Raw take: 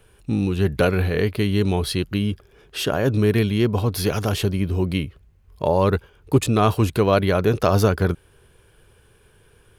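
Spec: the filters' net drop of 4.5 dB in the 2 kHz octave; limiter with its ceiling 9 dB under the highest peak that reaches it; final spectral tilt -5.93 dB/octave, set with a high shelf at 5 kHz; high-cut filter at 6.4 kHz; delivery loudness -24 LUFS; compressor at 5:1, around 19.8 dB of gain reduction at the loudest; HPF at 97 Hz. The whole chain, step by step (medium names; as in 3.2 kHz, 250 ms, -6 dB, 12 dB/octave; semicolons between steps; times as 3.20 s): high-pass 97 Hz; low-pass 6.4 kHz; peaking EQ 2 kHz -5 dB; treble shelf 5 kHz -8.5 dB; compression 5:1, threshold -35 dBFS; trim +16 dB; peak limiter -11.5 dBFS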